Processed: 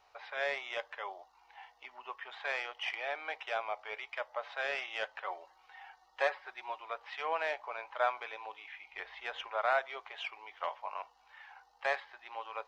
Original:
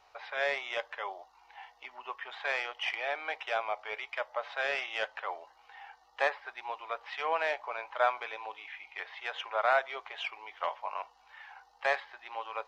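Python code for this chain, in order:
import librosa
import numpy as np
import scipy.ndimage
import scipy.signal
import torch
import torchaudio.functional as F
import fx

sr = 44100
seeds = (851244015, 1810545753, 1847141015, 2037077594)

y = fx.comb(x, sr, ms=5.4, depth=0.55, at=(5.24, 6.78))
y = fx.low_shelf(y, sr, hz=290.0, db=11.0, at=(8.93, 9.48))
y = y * librosa.db_to_amplitude(-3.5)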